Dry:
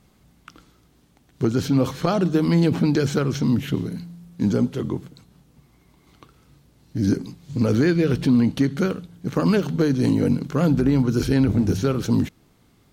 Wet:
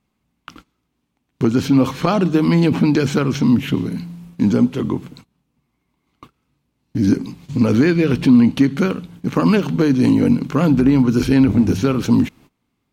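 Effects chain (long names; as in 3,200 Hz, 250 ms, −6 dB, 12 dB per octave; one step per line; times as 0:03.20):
graphic EQ with 15 bands 250 Hz +6 dB, 1,000 Hz +6 dB, 2,500 Hz +7 dB
noise gate −44 dBFS, range −21 dB
in parallel at −2.5 dB: downward compressor, threshold −27 dBFS, peak gain reduction 17 dB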